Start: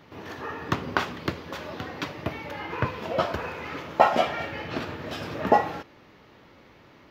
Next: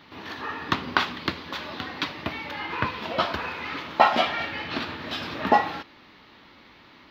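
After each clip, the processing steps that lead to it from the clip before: ten-band EQ 125 Hz -5 dB, 250 Hz +4 dB, 500 Hz -5 dB, 1000 Hz +4 dB, 2000 Hz +3 dB, 4000 Hz +11 dB, 8000 Hz -7 dB; gain -1 dB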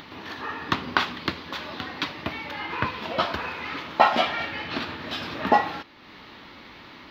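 upward compressor, threshold -37 dBFS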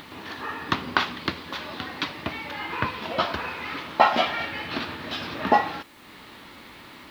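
requantised 10-bit, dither triangular

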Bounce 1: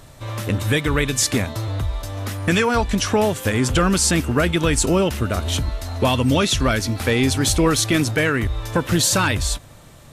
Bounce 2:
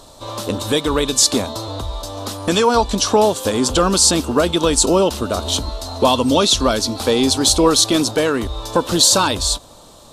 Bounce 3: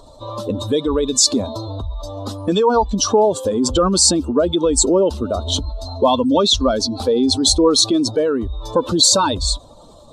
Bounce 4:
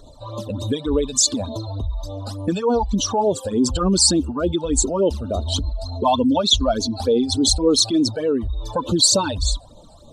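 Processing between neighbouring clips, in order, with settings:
ten-band EQ 125 Hz -9 dB, 250 Hz +4 dB, 500 Hz +5 dB, 1000 Hz +9 dB, 2000 Hz -12 dB, 4000 Hz +11 dB, 8000 Hz +5 dB; gain -1 dB
spectral contrast raised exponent 1.8
phaser stages 12, 3.4 Hz, lowest notch 340–1800 Hz

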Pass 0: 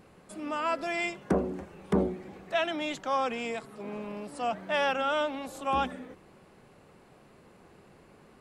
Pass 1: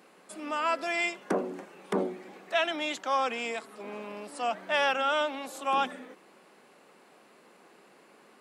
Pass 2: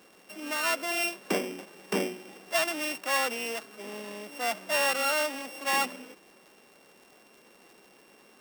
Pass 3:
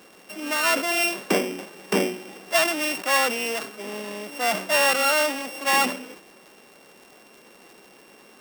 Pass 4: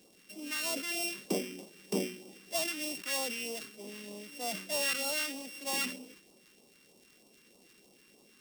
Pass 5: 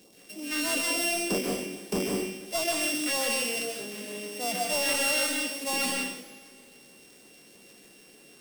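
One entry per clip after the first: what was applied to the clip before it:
HPF 210 Hz 24 dB/oct; tilt shelf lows -3.5 dB, about 640 Hz
sample sorter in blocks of 16 samples; crackle 120/s -45 dBFS
sustainer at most 110 dB/s; gain +6.5 dB
phaser stages 2, 3.2 Hz, lowest notch 660–1600 Hz; gain -8.5 dB
hard clip -28.5 dBFS, distortion -11 dB; reverb, pre-delay 0.124 s, DRR 0 dB; gain +5 dB

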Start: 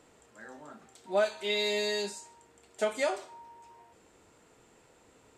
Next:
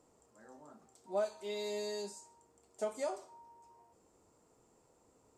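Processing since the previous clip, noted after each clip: band shelf 2400 Hz -10 dB; gain -7 dB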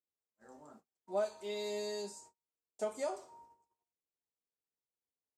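gate -58 dBFS, range -37 dB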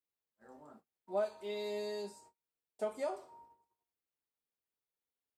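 bell 6700 Hz -11 dB 0.79 oct

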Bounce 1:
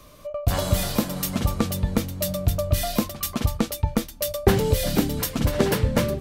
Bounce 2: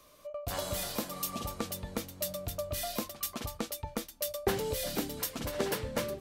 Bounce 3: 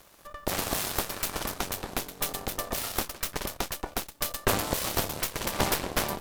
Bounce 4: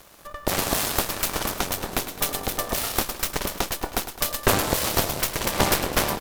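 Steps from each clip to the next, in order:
spectral repair 1.13–1.43, 950–2400 Hz after; tone controls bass -10 dB, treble +2 dB; gain -9 dB
per-bin compression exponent 0.6; added harmonics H 6 -7 dB, 7 -18 dB, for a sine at -12.5 dBFS; bit-crush 11-bit
feedback echo 0.105 s, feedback 55%, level -12 dB; gain +5.5 dB

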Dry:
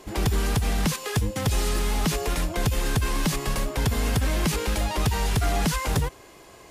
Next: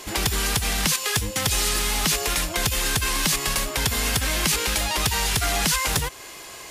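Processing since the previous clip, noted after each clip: tilt shelf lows -7 dB, about 1100 Hz; in parallel at +3 dB: compressor, threshold -34 dBFS, peak gain reduction 13 dB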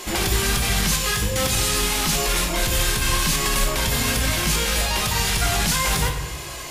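limiter -17.5 dBFS, peak gain reduction 10.5 dB; shoebox room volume 240 m³, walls mixed, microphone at 0.95 m; gain +3.5 dB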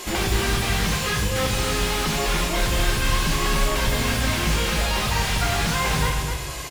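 outdoor echo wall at 44 m, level -7 dB; slew limiter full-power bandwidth 230 Hz

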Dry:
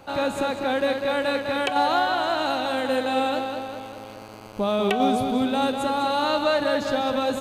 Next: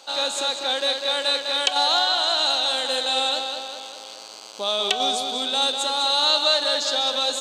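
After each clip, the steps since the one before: HPF 520 Hz 12 dB/oct; band shelf 5200 Hz +15.5 dB; gain -1.5 dB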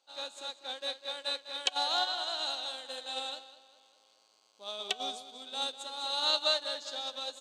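resonator 360 Hz, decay 0.79 s, mix 60%; upward expander 2.5:1, over -38 dBFS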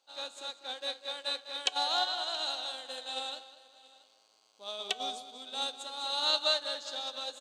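echo 0.677 s -22 dB; on a send at -18 dB: reverb RT60 0.65 s, pre-delay 3 ms

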